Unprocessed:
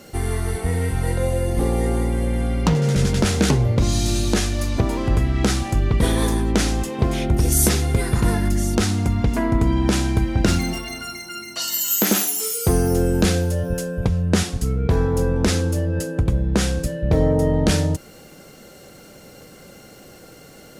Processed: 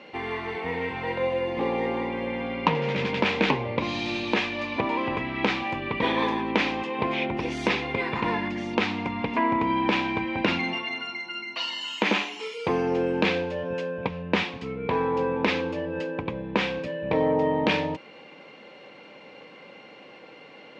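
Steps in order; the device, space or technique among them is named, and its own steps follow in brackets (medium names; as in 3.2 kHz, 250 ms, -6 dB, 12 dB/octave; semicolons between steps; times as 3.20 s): phone earpiece (cabinet simulation 340–3300 Hz, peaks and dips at 380 Hz -6 dB, 680 Hz -6 dB, 970 Hz +7 dB, 1.4 kHz -8 dB, 2.4 kHz +7 dB); trim +1.5 dB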